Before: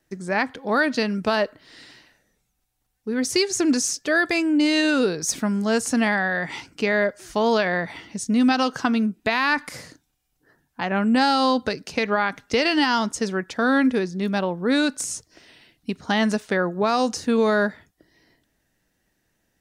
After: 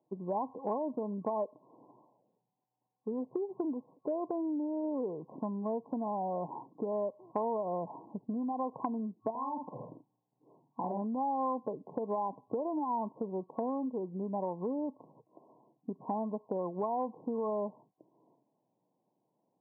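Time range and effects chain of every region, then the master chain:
9.30–11.02 s: compression 5:1, threshold -28 dBFS + bass shelf 440 Hz +5 dB + doubling 50 ms -3.5 dB
whole clip: FFT band-pass 110–1100 Hz; compression, threshold -28 dBFS; tilt EQ +3 dB/octave

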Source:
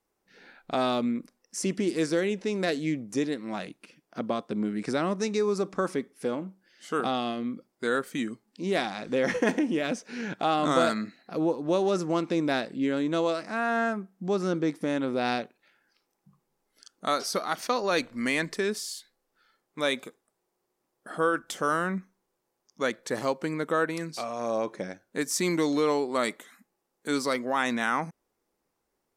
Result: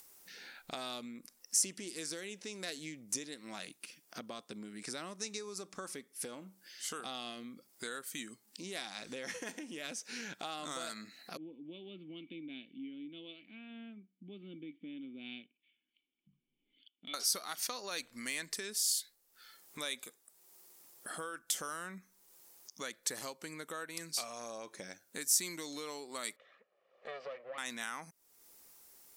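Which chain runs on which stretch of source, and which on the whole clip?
11.37–17.14 s: cascade formant filter i + treble shelf 2.4 kHz +9.5 dB + three bands expanded up and down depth 70%
26.36–27.58 s: comb filter that takes the minimum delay 1.7 ms + cabinet simulation 330–2400 Hz, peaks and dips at 550 Hz +9 dB, 1 kHz -6 dB, 1.6 kHz -6 dB, 2.3 kHz -4 dB
whole clip: compression 4:1, threshold -36 dBFS; pre-emphasis filter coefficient 0.9; upward compressor, threshold -56 dBFS; trim +10 dB

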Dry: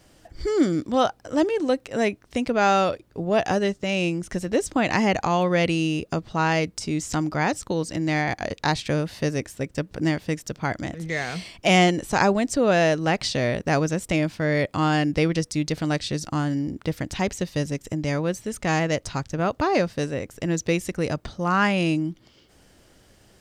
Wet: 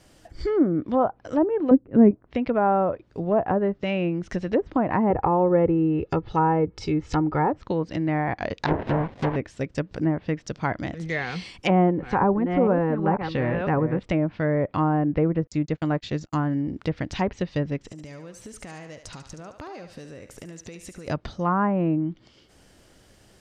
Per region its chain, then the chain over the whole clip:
1.71–2.11 s: resonant low shelf 430 Hz +11 dB, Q 1.5 + upward expansion, over -31 dBFS
5.10–7.50 s: bass shelf 410 Hz +3.5 dB + comb 2.3 ms, depth 60%
8.66–9.36 s: phase dispersion highs, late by 134 ms, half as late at 1.9 kHz + sample-rate reducer 1.3 kHz, jitter 20%
11.19–14.03 s: chunks repeated in reverse 496 ms, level -8 dB + Butterworth band-stop 650 Hz, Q 5.4
15.47–16.62 s: resonant low-pass 7.1 kHz, resonance Q 10 + gate -29 dBFS, range -41 dB
17.79–21.08 s: compression 16:1, threshold -36 dBFS + thinning echo 72 ms, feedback 52%, high-pass 520 Hz, level -8 dB
whole clip: low-pass that closes with the level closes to 1.7 kHz, closed at -19 dBFS; dynamic bell 1 kHz, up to +5 dB, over -41 dBFS, Q 5.6; low-pass that closes with the level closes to 1 kHz, closed at -17 dBFS

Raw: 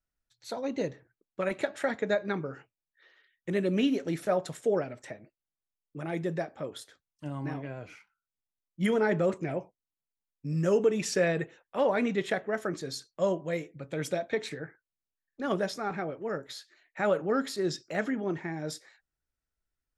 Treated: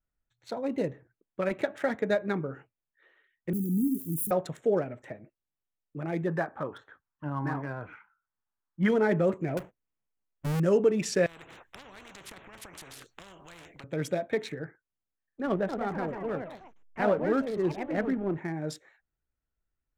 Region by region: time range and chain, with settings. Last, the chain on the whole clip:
3.53–4.31 s: zero-crossing glitches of -24 dBFS + inverse Chebyshev band-stop 630–4800 Hz, stop band 50 dB
6.27–8.89 s: Gaussian low-pass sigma 1.9 samples + high-order bell 1.2 kHz +10.5 dB 1.3 oct
9.57–10.60 s: square wave that keeps the level + compression 5:1, threshold -31 dBFS + peaking EQ 3.9 kHz -7.5 dB 0.33 oct
11.26–13.84 s: compression 2.5:1, threshold -42 dBFS + spectrum-flattening compressor 10:1
15.46–18.38 s: hysteresis with a dead band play -38 dBFS + ever faster or slower copies 228 ms, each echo +3 st, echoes 3, each echo -6 dB + distance through air 150 m
whole clip: local Wiener filter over 9 samples; bass shelf 370 Hz +3.5 dB

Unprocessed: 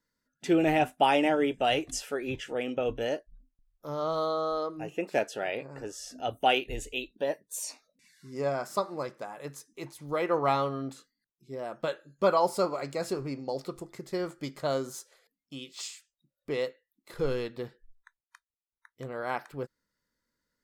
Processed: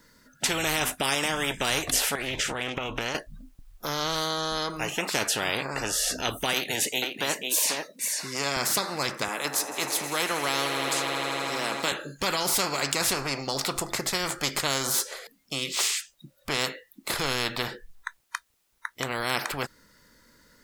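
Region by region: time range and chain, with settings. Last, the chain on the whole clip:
2.15–3.15 s: compression 12:1, threshold -37 dBFS + loudspeaker Doppler distortion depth 0.19 ms
6.53–8.57 s: Bessel high-pass 260 Hz, order 4 + delay 492 ms -14 dB
9.28–11.92 s: high-pass 260 Hz 24 dB/octave + echo with a slow build-up 80 ms, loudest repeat 5, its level -18 dB
whole clip: loudness maximiser +16.5 dB; spectrum-flattening compressor 4:1; trim -1.5 dB

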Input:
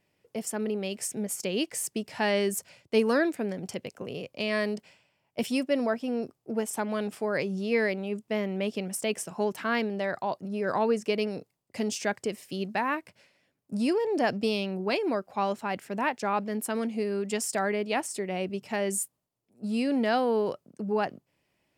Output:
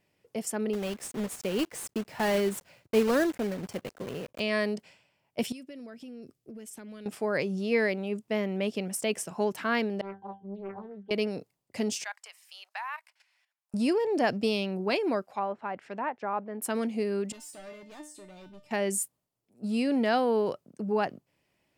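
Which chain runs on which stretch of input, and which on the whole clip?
0.73–4.40 s: block-companded coder 3-bit + treble shelf 2.4 kHz -8 dB
5.52–7.06 s: peaking EQ 870 Hz -14 dB 1.2 oct + compression 8:1, threshold -41 dBFS
10.01–11.11 s: distance through air 150 m + pitch-class resonator G, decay 0.26 s + loudspeaker Doppler distortion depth 0.62 ms
12.04–13.74 s: steep high-pass 810 Hz + level held to a coarse grid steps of 12 dB
15.25–16.62 s: low-pass that closes with the level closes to 1.2 kHz, closed at -26.5 dBFS + bass shelf 380 Hz -10.5 dB
17.32–18.71 s: bass shelf 200 Hz +9 dB + overload inside the chain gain 30 dB + feedback comb 300 Hz, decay 0.32 s, mix 90%
whole clip: none

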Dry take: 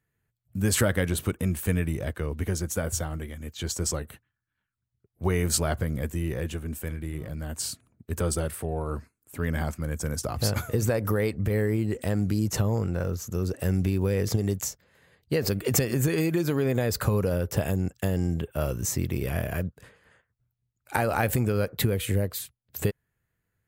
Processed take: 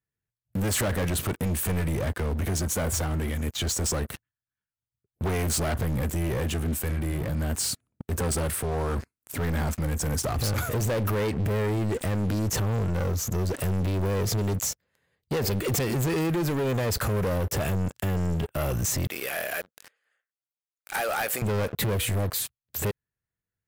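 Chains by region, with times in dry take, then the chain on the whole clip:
19.07–21.42 s: high-pass 760 Hz + peaking EQ 970 Hz -13 dB 0.21 oct
whole clip: waveshaping leveller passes 5; peak limiter -20 dBFS; trim -3 dB

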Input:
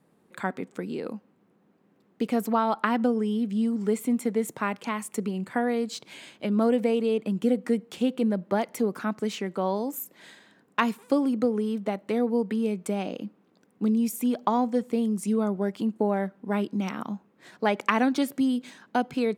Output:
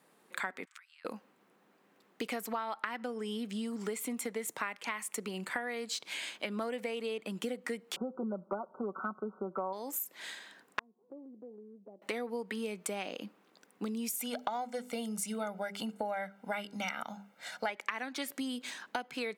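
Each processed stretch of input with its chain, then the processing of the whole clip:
0.65–1.05 s: treble shelf 5.1 kHz -11 dB + compression 4:1, threshold -48 dBFS + steep high-pass 1.2 kHz
7.96–9.73 s: brick-wall FIR low-pass 1.5 kHz + comb 5.3 ms, depth 64%
10.79–12.02 s: inverse Chebyshev low-pass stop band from 2.6 kHz, stop band 70 dB + feedback comb 360 Hz, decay 0.38 s + compression 2:1, threshold -53 dBFS
14.19–17.70 s: hum notches 50/100/150/200/250/300/350/400/450 Hz + comb 1.4 ms, depth 77%
whole clip: high-pass 1.2 kHz 6 dB/octave; dynamic bell 2 kHz, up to +6 dB, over -49 dBFS, Q 2.3; compression 6:1, threshold -41 dBFS; trim +7 dB

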